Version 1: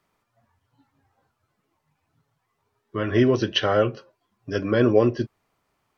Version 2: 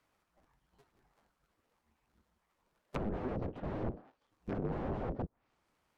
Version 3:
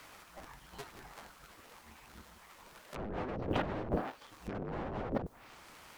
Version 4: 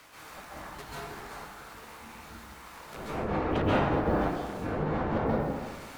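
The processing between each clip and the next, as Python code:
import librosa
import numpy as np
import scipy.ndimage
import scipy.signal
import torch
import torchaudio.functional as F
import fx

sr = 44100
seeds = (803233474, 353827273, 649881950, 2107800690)

y1 = fx.cycle_switch(x, sr, every=2, mode='inverted')
y1 = (np.mod(10.0 ** (20.0 / 20.0) * y1 + 1.0, 2.0) - 1.0) / 10.0 ** (20.0 / 20.0)
y1 = fx.env_lowpass_down(y1, sr, base_hz=530.0, full_db=-27.0)
y1 = y1 * librosa.db_to_amplitude(-5.0)
y2 = fx.tilt_shelf(y1, sr, db=-4.0, hz=780.0)
y2 = fx.over_compress(y2, sr, threshold_db=-50.0, ratio=-1.0)
y2 = y2 * librosa.db_to_amplitude(12.5)
y3 = fx.low_shelf(y2, sr, hz=110.0, db=-4.0)
y3 = fx.rev_plate(y3, sr, seeds[0], rt60_s=1.4, hf_ratio=0.5, predelay_ms=120, drr_db=-9.0)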